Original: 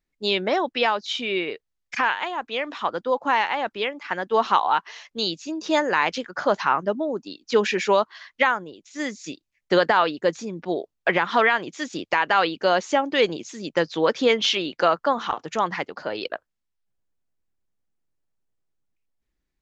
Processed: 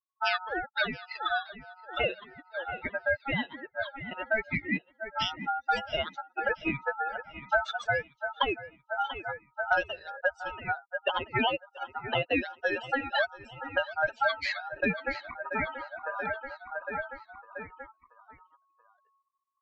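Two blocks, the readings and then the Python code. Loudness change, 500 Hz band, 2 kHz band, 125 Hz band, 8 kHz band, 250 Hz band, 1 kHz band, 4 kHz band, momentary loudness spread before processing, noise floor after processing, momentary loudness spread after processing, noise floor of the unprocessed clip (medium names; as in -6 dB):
-8.5 dB, -10.5 dB, -4.0 dB, -3.0 dB, no reading, -9.5 dB, -9.5 dB, -8.5 dB, 12 LU, -73 dBFS, 10 LU, -80 dBFS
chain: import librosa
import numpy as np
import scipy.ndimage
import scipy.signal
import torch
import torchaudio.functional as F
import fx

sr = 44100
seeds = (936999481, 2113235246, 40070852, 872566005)

y = fx.bin_expand(x, sr, power=3.0)
y = fx.band_shelf(y, sr, hz=850.0, db=-10.0, octaves=1.1)
y = fx.echo_feedback(y, sr, ms=682, feedback_pct=51, wet_db=-19.5)
y = fx.env_lowpass(y, sr, base_hz=520.0, full_db=-28.0)
y = fx.spec_repair(y, sr, seeds[0], start_s=9.92, length_s=0.26, low_hz=490.0, high_hz=1600.0, source='both')
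y = y * np.sin(2.0 * np.pi * 1100.0 * np.arange(len(y)) / sr)
y = fx.air_absorb(y, sr, metres=200.0)
y = fx.band_squash(y, sr, depth_pct=100)
y = y * 10.0 ** (7.5 / 20.0)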